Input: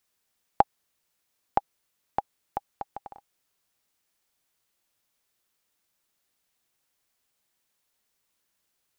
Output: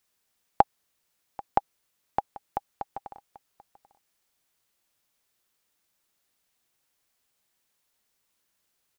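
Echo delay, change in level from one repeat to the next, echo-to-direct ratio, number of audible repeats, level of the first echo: 788 ms, no regular repeats, -20.5 dB, 1, -20.5 dB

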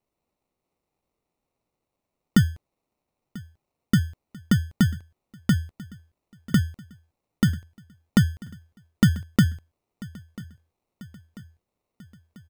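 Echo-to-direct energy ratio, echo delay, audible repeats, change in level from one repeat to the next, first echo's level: -19.0 dB, 991 ms, 3, -5.0 dB, -20.5 dB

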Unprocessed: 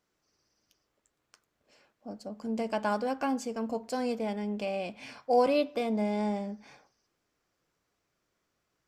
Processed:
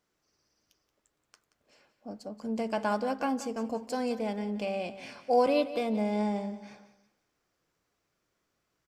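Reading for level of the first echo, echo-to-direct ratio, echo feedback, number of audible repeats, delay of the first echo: -14.0 dB, -13.5 dB, 35%, 3, 178 ms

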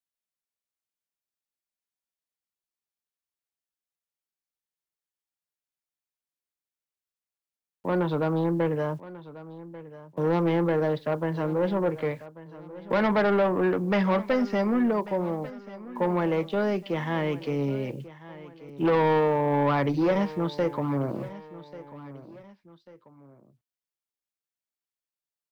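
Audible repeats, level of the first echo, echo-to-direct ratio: 2, -17.0 dB, -16.5 dB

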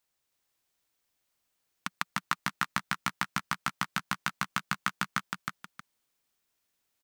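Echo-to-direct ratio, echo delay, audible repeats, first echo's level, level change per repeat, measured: -2.5 dB, 315 ms, 2, -3.0 dB, -11.5 dB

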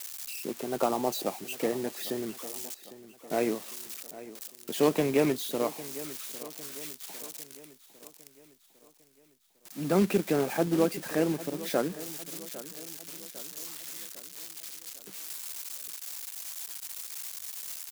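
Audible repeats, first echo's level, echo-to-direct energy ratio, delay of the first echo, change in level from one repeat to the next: 4, -16.5 dB, -15.0 dB, 803 ms, -6.0 dB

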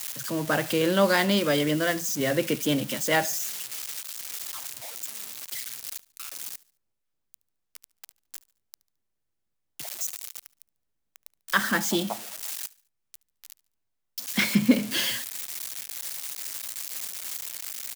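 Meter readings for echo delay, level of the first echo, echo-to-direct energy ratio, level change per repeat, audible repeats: 72 ms, -22.0 dB, -21.5 dB, -8.0 dB, 2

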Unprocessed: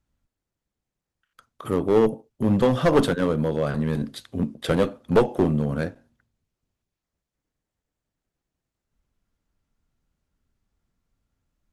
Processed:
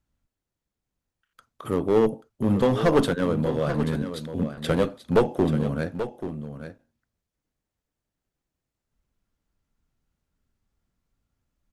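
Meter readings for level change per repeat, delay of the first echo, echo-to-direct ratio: no regular repeats, 834 ms, -10.5 dB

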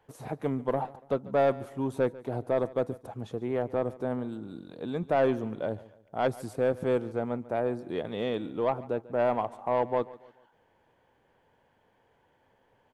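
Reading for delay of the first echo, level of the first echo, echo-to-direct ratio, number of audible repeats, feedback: 143 ms, -19.5 dB, -19.0 dB, 2, 40%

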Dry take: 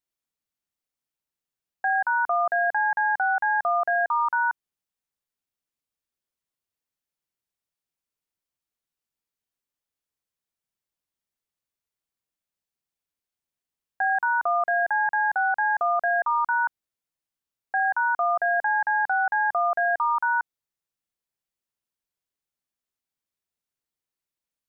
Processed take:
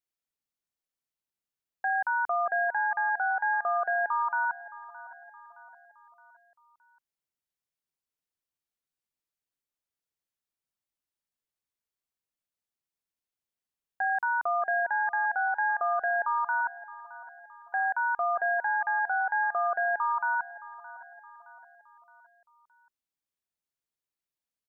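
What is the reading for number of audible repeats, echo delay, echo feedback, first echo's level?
3, 618 ms, 49%, -18.0 dB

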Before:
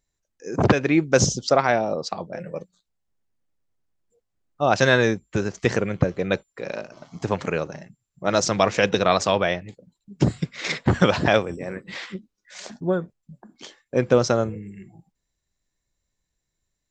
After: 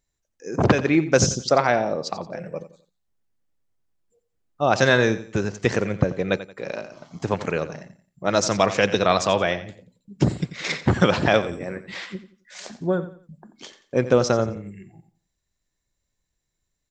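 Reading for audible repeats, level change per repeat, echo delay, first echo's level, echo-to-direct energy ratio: 3, -10.0 dB, 88 ms, -14.0 dB, -13.5 dB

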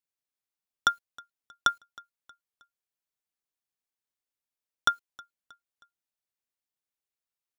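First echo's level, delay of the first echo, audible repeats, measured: -24.0 dB, 316 ms, 2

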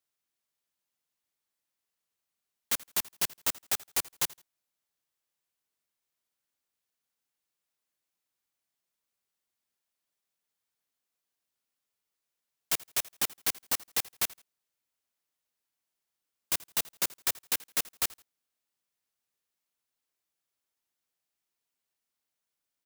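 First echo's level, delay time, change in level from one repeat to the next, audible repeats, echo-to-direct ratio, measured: -22.0 dB, 82 ms, -11.0 dB, 2, -21.5 dB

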